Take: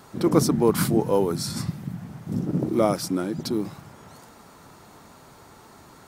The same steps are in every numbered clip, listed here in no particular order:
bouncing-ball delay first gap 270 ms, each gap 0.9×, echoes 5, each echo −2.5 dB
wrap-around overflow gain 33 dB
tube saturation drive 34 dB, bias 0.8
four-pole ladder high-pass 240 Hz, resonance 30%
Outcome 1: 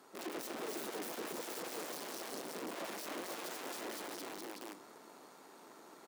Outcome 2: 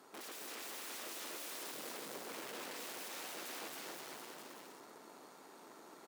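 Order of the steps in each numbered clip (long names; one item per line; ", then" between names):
bouncing-ball delay, then tube saturation, then wrap-around overflow, then four-pole ladder high-pass
wrap-around overflow, then bouncing-ball delay, then tube saturation, then four-pole ladder high-pass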